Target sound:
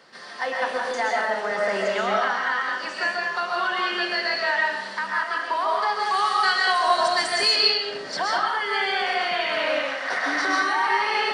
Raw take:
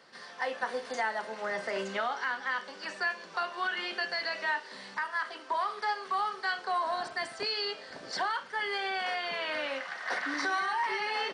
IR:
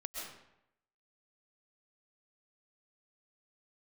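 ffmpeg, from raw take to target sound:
-filter_complex "[0:a]asettb=1/sr,asplit=3[link_01][link_02][link_03];[link_01]atrim=end=5.994[link_04];[link_02]atrim=start=5.99:end=7.56,asetpts=PTS-STARTPTS,afade=type=in:duration=0.004:curve=qsin,afade=type=out:start_time=1.566:duration=0.004:curve=qsin,highshelf=frequency=2700:gain=11.5[link_05];[link_03]atrim=start=7.556[link_06];[link_04][link_05]acrossfade=duration=0.004:curve1=hsin:curve2=qsin[link_07];[link_07][link_06]acrossfade=duration=0.004:curve1=qsin:curve2=hsin,acontrast=52[link_08];[1:a]atrim=start_sample=2205[link_09];[link_08][link_09]afir=irnorm=-1:irlink=0,volume=3.5dB"

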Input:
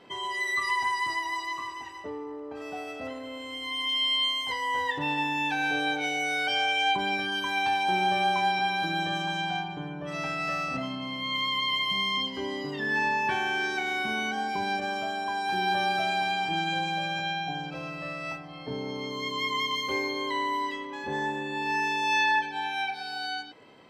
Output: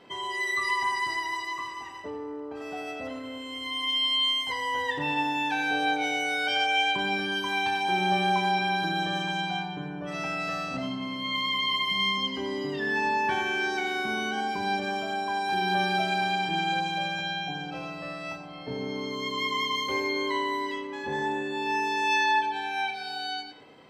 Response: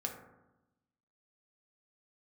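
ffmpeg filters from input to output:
-filter_complex "[0:a]asplit=2[link_01][link_02];[1:a]atrim=start_sample=2205,lowpass=7800,adelay=87[link_03];[link_02][link_03]afir=irnorm=-1:irlink=0,volume=-7.5dB[link_04];[link_01][link_04]amix=inputs=2:normalize=0"

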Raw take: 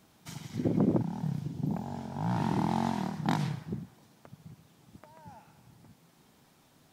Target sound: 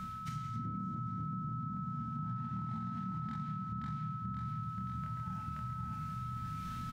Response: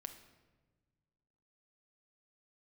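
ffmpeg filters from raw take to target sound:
-filter_complex "[0:a]asplit=2[link_01][link_02];[link_02]adelay=26,volume=-3dB[link_03];[link_01][link_03]amix=inputs=2:normalize=0,asplit=2[link_04][link_05];[link_05]aeval=exprs='val(0)*gte(abs(val(0)),0.00944)':channel_layout=same,volume=-9.5dB[link_06];[link_04][link_06]amix=inputs=2:normalize=0,firequalizer=gain_entry='entry(110,0);entry(230,-10);entry(370,-29);entry(860,-26);entry(1400,-11)':delay=0.05:min_phase=1,aecho=1:1:528|1056|1584|2112:0.668|0.167|0.0418|0.0104[link_07];[1:a]atrim=start_sample=2205,afade=type=out:start_time=0.32:duration=0.01,atrim=end_sample=14553,asetrate=57330,aresample=44100[link_08];[link_07][link_08]afir=irnorm=-1:irlink=0,areverse,acompressor=mode=upward:threshold=-37dB:ratio=2.5,areverse,alimiter=level_in=14.5dB:limit=-24dB:level=0:latency=1:release=319,volume=-14.5dB,acompressor=threshold=-55dB:ratio=3,aeval=exprs='val(0)+0.00178*sin(2*PI*1300*n/s)':channel_layout=same,highshelf=frequency=3800:gain=-11,volume=14.5dB"

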